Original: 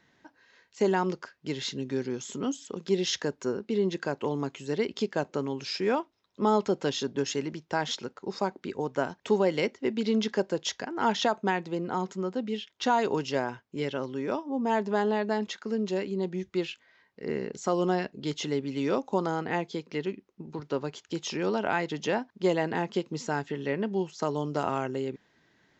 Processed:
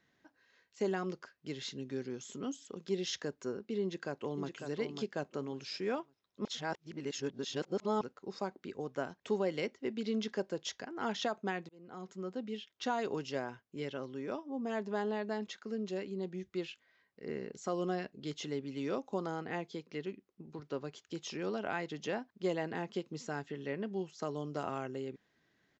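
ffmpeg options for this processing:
-filter_complex "[0:a]asplit=2[a][b];[b]afade=t=in:st=3.82:d=0.01,afade=t=out:st=4.5:d=0.01,aecho=0:1:550|1100|1650:0.473151|0.118288|0.029572[c];[a][c]amix=inputs=2:normalize=0,asplit=4[d][e][f][g];[d]atrim=end=6.452[h];[e]atrim=start=6.448:end=8.012,asetpts=PTS-STARTPTS,areverse[i];[f]atrim=start=8.008:end=11.69,asetpts=PTS-STARTPTS,afade=t=out:st=3.678:d=0.004:c=hsin[j];[g]atrim=start=11.69,asetpts=PTS-STARTPTS,afade=t=in:d=0.61[k];[h][i]acrossfade=d=0.004:c1=hsin:c2=hsin[l];[j][k]concat=n=2:v=0:a=1[m];[l][m]acrossfade=d=0.004:c1=hsin:c2=hsin,bandreject=f=910:w=10,volume=-8.5dB"

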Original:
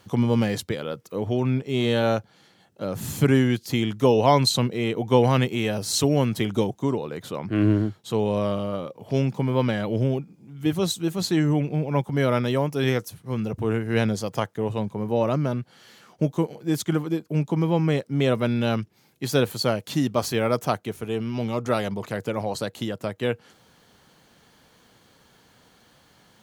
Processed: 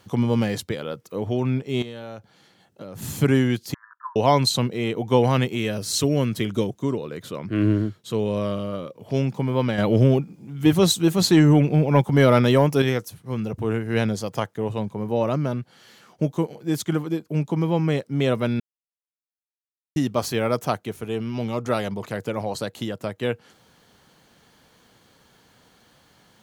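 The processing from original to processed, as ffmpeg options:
-filter_complex "[0:a]asettb=1/sr,asplit=3[a][b][c];[a]atrim=end=1.824[d];[b]atrim=start=1.82:end=3.02,asetpts=PTS-STARTPTS,afade=t=in:d=0.004:c=qsin,afade=t=out:st=1.196:d=0.004:c=qsin,acompressor=threshold=-33dB:ratio=6:attack=3.2:release=140:knee=1:detection=peak[e];[c]atrim=start=3.016[f];[d][e]acrossfade=d=0.004:c1=hsin:c2=qsin[g];[g][f]acrossfade=d=0.004:c1=qsin:c2=hsin,asettb=1/sr,asplit=3[h][i][j];[h]atrim=end=3.744[k];[i]atrim=start=3.74:end=4.16,asetpts=PTS-STARTPTS,afade=t=in:d=0.004:c=qsin,afade=t=out:st=0.416:d=0.004:c=qsin,asuperpass=centerf=1300:order=20:qfactor=1.6[l];[j]atrim=start=4.156[m];[k][l]acrossfade=d=0.004:c1=hsin:c2=qsin[n];[n][m]acrossfade=d=0.004:c1=qsin:c2=hsin,asettb=1/sr,asplit=3[o][p][q];[o]atrim=end=5.574[r];[p]atrim=start=5.57:end=9.05,asetpts=PTS-STARTPTS,afade=t=in:d=0.004:c=qsin,afade=t=out:st=3.476:d=0.004:c=qsin,equalizer=f=810:t=o:w=0.4:g=-9[s];[q]atrim=start=9.046[t];[r][s]acrossfade=d=0.004:c1=hsin:c2=qsin[u];[u][t]acrossfade=d=0.004:c1=qsin:c2=hsin,asettb=1/sr,asplit=3[v][w][x];[v]atrim=end=9.784[y];[w]atrim=start=9.78:end=12.82,asetpts=PTS-STARTPTS,afade=t=in:d=0.004:c=qsin,afade=t=out:st=3.036:d=0.004:c=qsin,acontrast=77[z];[x]atrim=start=12.816[aa];[y][z]acrossfade=d=0.004:c1=hsin:c2=qsin[ab];[ab][aa]acrossfade=d=0.004:c1=qsin:c2=hsin,asplit=3[ac][ad][ae];[ac]atrim=end=18.6,asetpts=PTS-STARTPTS,afade=t=out:st=18.596:d=0.004:c=hsin[af];[ad]atrim=start=18.6:end=19.96,asetpts=PTS-STARTPTS,volume=0[ag];[ae]atrim=start=19.96,asetpts=PTS-STARTPTS,afade=t=in:d=0.004:c=hsin[ah];[af][ag][ah]concat=n=3:v=0:a=1"

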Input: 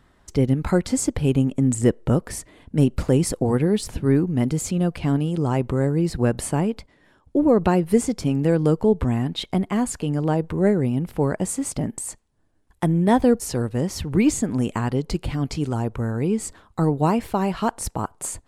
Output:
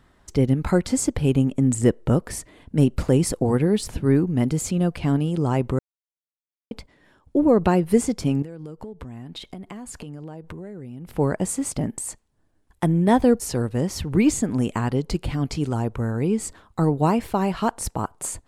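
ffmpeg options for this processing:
-filter_complex "[0:a]asettb=1/sr,asplit=3[a][b][c];[a]atrim=end=8.424[d];[b]atrim=start=8.42:end=11.13,asetpts=PTS-STARTPTS,afade=t=in:d=0.004:c=qsin,afade=t=out:st=2.706:d=0.004:c=qsin,acompressor=threshold=-32dB:ratio=16:attack=3.2:release=140:knee=1:detection=peak[e];[c]atrim=start=11.126[f];[d][e]acrossfade=d=0.004:c1=hsin:c2=qsin[g];[g][f]acrossfade=d=0.004:c1=qsin:c2=hsin,asplit=3[h][i][j];[h]atrim=end=5.79,asetpts=PTS-STARTPTS,afade=t=out:st=5.786:d=0.004:c=hsin[k];[i]atrim=start=5.79:end=6.71,asetpts=PTS-STARTPTS,volume=0[l];[j]atrim=start=6.71,asetpts=PTS-STARTPTS,afade=t=in:d=0.004:c=hsin[m];[k][l][m]concat=n=3:v=0:a=1"

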